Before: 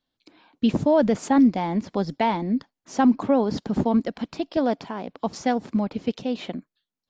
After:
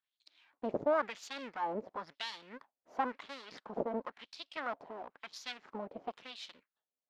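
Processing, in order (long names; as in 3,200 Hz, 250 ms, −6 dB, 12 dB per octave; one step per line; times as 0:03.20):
half-wave rectification
auto-filter band-pass sine 0.97 Hz 560–4,200 Hz
level +1 dB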